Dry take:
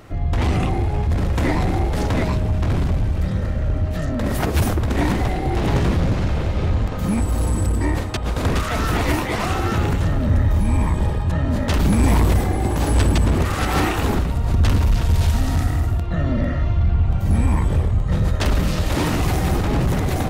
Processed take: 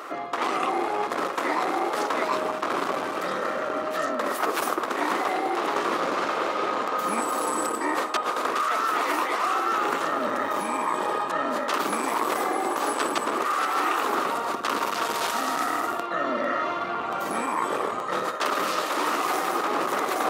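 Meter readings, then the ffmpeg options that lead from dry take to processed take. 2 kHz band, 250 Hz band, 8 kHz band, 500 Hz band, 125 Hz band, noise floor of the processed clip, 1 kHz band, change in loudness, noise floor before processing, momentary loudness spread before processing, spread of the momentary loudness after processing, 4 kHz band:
+0.5 dB, −10.0 dB, −1.5 dB, −1.0 dB, −33.5 dB, −31 dBFS, +4.5 dB, −5.5 dB, −24 dBFS, 4 LU, 3 LU, −2.0 dB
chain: -af "highpass=frequency=340:width=0.5412,highpass=frequency=340:width=1.3066,equalizer=frequency=1200:width=2.5:gain=12,areverse,acompressor=threshold=-28dB:ratio=6,areverse,volume=5.5dB"

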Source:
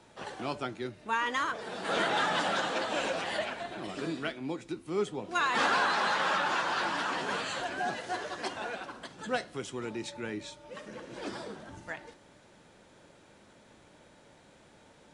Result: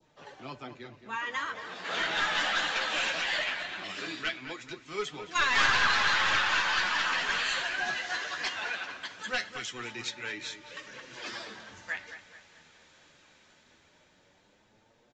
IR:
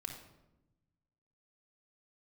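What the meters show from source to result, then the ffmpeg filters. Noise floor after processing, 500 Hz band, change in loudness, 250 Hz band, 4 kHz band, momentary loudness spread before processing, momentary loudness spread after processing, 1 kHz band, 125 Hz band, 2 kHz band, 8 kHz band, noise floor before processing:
−65 dBFS, −6.5 dB, +3.0 dB, −7.5 dB, +6.0 dB, 15 LU, 19 LU, −1.5 dB, −4.0 dB, +5.0 dB, +4.0 dB, −59 dBFS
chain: -filter_complex "[0:a]adynamicequalizer=threshold=0.00631:dfrequency=2000:dqfactor=0.86:tfrequency=2000:tqfactor=0.86:attack=5:release=100:ratio=0.375:range=2:mode=boostabove:tftype=bell,bandreject=frequency=1400:width=26,acrossover=split=180|1300[link_01][link_02][link_03];[link_03]dynaudnorm=framelen=610:gausssize=7:maxgain=14dB[link_04];[link_01][link_02][link_04]amix=inputs=3:normalize=0,flanger=delay=6.3:depth=7.5:regen=34:speed=0.19:shape=triangular,aeval=exprs='clip(val(0),-1,0.0944)':channel_layout=same,flanger=delay=0.1:depth=2.2:regen=78:speed=1.9:shape=triangular,asplit=2[link_05][link_06];[link_06]adelay=218,lowpass=frequency=2700:poles=1,volume=-10dB,asplit=2[link_07][link_08];[link_08]adelay=218,lowpass=frequency=2700:poles=1,volume=0.48,asplit=2[link_09][link_10];[link_10]adelay=218,lowpass=frequency=2700:poles=1,volume=0.48,asplit=2[link_11][link_12];[link_12]adelay=218,lowpass=frequency=2700:poles=1,volume=0.48,asplit=2[link_13][link_14];[link_14]adelay=218,lowpass=frequency=2700:poles=1,volume=0.48[link_15];[link_07][link_09][link_11][link_13][link_15]amix=inputs=5:normalize=0[link_16];[link_05][link_16]amix=inputs=2:normalize=0,aresample=16000,aresample=44100"

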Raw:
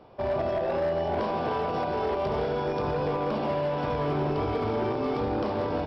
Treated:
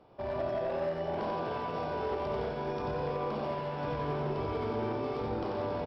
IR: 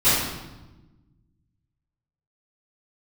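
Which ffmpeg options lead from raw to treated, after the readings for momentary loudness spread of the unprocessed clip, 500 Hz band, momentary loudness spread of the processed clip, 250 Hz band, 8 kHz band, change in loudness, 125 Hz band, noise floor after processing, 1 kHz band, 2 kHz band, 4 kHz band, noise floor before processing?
1 LU, −6.0 dB, 2 LU, −6.5 dB, can't be measured, −6.0 dB, −5.5 dB, −37 dBFS, −6.0 dB, −5.5 dB, −6.0 dB, −30 dBFS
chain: -af "aecho=1:1:90:0.668,volume=-7.5dB"

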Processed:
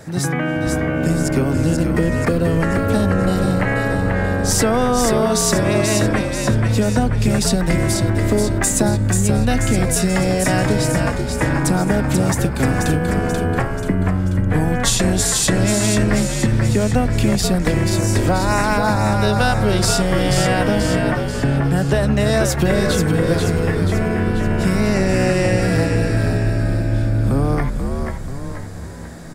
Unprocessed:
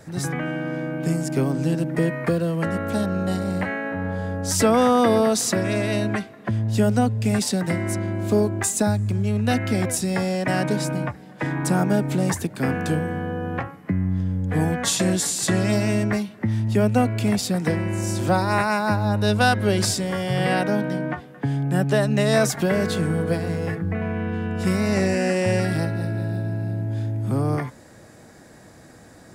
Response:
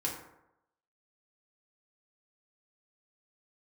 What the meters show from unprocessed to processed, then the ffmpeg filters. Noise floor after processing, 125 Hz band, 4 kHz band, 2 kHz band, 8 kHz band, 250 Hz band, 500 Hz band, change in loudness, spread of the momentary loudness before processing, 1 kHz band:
−24 dBFS, +6.0 dB, +6.0 dB, +5.0 dB, +6.5 dB, +4.5 dB, +4.5 dB, +5.0 dB, 8 LU, +4.0 dB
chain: -filter_complex "[0:a]acompressor=threshold=-21dB:ratio=6,asplit=8[link_01][link_02][link_03][link_04][link_05][link_06][link_07][link_08];[link_02]adelay=485,afreqshift=-69,volume=-4.5dB[link_09];[link_03]adelay=970,afreqshift=-138,volume=-10dB[link_10];[link_04]adelay=1455,afreqshift=-207,volume=-15.5dB[link_11];[link_05]adelay=1940,afreqshift=-276,volume=-21dB[link_12];[link_06]adelay=2425,afreqshift=-345,volume=-26.6dB[link_13];[link_07]adelay=2910,afreqshift=-414,volume=-32.1dB[link_14];[link_08]adelay=3395,afreqshift=-483,volume=-37.6dB[link_15];[link_01][link_09][link_10][link_11][link_12][link_13][link_14][link_15]amix=inputs=8:normalize=0,volume=7dB"

